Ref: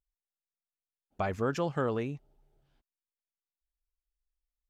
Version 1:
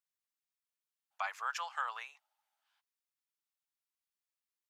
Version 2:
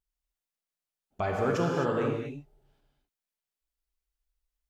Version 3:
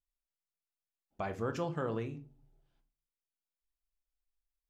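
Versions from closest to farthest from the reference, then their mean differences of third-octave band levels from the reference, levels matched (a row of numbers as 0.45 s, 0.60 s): 3, 2, 1; 2.5 dB, 7.0 dB, 16.0 dB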